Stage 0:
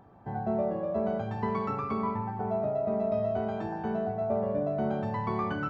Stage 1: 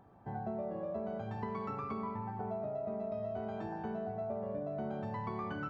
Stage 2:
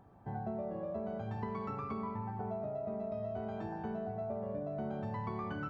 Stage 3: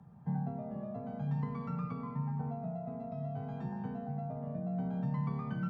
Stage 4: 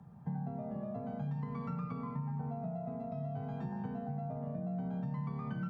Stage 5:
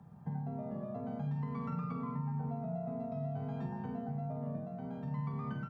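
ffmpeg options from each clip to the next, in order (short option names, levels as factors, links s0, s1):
-af "acompressor=threshold=0.0316:ratio=6,volume=0.562"
-af "lowshelf=f=130:g=5.5,volume=0.891"
-af "lowshelf=f=200:t=q:w=3:g=8.5,afreqshift=35,volume=0.631"
-af "acompressor=threshold=0.0158:ratio=6,volume=1.19"
-filter_complex "[0:a]bandreject=f=60:t=h:w=6,bandreject=f=120:t=h:w=6,bandreject=f=180:t=h:w=6,asplit=2[s0][s1];[s1]adelay=47,volume=0.376[s2];[s0][s2]amix=inputs=2:normalize=0"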